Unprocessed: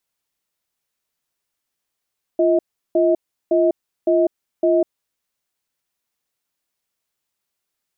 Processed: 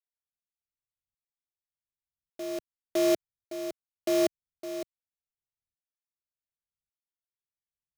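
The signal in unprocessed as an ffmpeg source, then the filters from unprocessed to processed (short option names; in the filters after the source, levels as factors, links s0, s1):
-f lavfi -i "aevalsrc='0.168*(sin(2*PI*346*t)+sin(2*PI*637*t))*clip(min(mod(t,0.56),0.2-mod(t,0.56))/0.005,0,1)':d=2.78:s=44100"
-filter_complex "[0:a]acrossover=split=150[s0][s1];[s1]acrusher=bits=3:mix=0:aa=0.000001[s2];[s0][s2]amix=inputs=2:normalize=0,aeval=exprs='val(0)*pow(10,-22*if(lt(mod(-0.87*n/s,1),2*abs(-0.87)/1000),1-mod(-0.87*n/s,1)/(2*abs(-0.87)/1000),(mod(-0.87*n/s,1)-2*abs(-0.87)/1000)/(1-2*abs(-0.87)/1000))/20)':c=same"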